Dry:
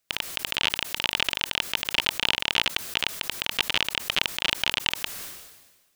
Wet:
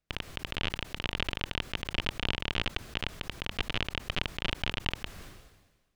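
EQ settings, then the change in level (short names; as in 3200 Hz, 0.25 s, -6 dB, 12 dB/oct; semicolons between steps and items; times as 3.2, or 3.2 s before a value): RIAA curve playback; -5.5 dB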